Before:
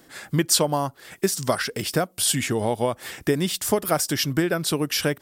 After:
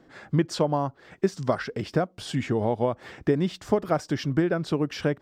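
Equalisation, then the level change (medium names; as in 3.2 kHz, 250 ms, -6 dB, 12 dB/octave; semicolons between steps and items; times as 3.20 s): distance through air 180 m; peaking EQ 3.2 kHz -7 dB 2.4 oct; 0.0 dB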